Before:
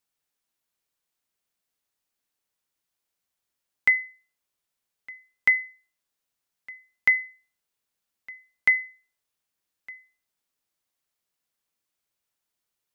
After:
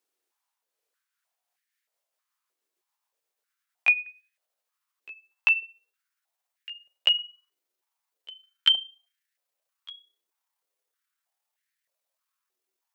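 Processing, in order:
pitch glide at a constant tempo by +11 semitones starting unshifted
high-pass on a step sequencer 3.2 Hz 370–1,800 Hz

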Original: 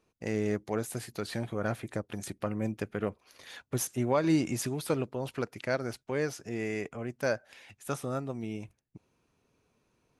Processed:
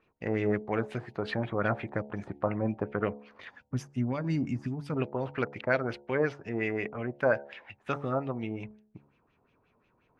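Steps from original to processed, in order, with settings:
auto-filter low-pass sine 5.6 Hz 850–3,000 Hz
gain on a spectral selection 0:03.50–0:04.96, 300–4,500 Hz −12 dB
hum removal 71.11 Hz, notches 13
level +2 dB

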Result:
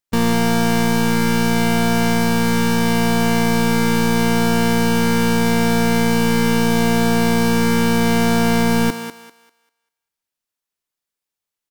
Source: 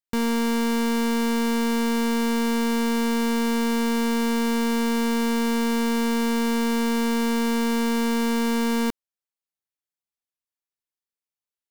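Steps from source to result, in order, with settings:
pitch-shifted copies added −12 semitones −11 dB, −5 semitones −7 dB
feedback echo with a high-pass in the loop 197 ms, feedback 29%, high-pass 400 Hz, level −8 dB
level +6 dB

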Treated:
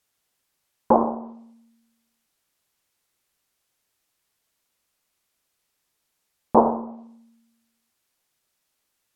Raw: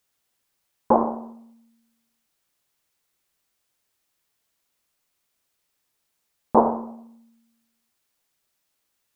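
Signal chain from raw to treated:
treble cut that deepens with the level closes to 1,500 Hz, closed at −22 dBFS
level +1 dB

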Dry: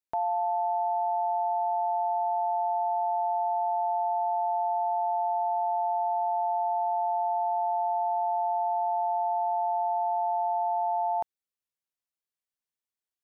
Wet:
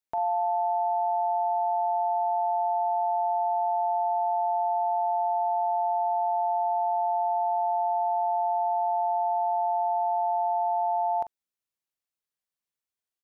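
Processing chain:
double-tracking delay 43 ms −12 dB

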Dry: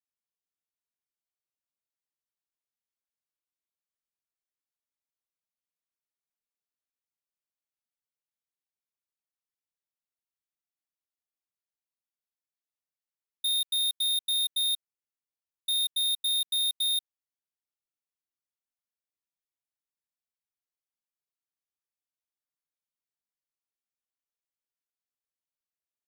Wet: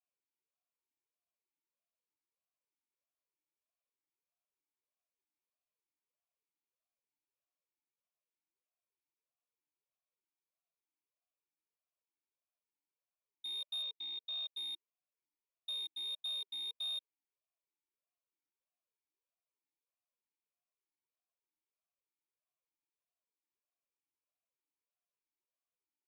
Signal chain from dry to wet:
0:13.82–0:14.57: gap after every zero crossing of 0.05 ms
formant filter swept between two vowels a-u 1.6 Hz
level +9.5 dB

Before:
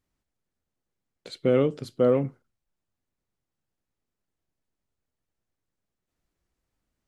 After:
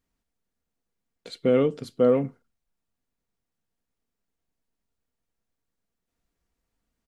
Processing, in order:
comb filter 4.3 ms, depth 32%

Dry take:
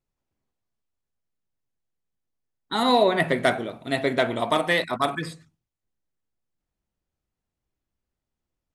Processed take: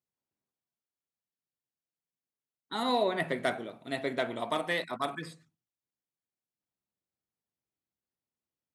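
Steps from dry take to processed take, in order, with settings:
high-pass filter 130 Hz 12 dB per octave
level −9 dB

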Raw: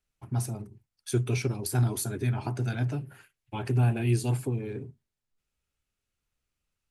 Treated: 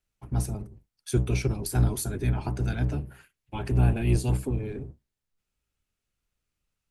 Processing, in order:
sub-octave generator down 1 octave, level −1 dB

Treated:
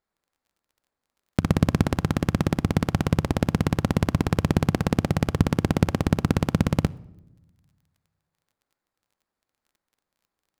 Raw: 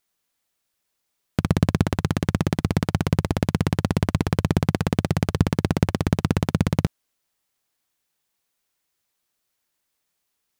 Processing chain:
running median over 15 samples
surface crackle 23 per second −52 dBFS
on a send: convolution reverb RT60 0.95 s, pre-delay 4 ms, DRR 18 dB

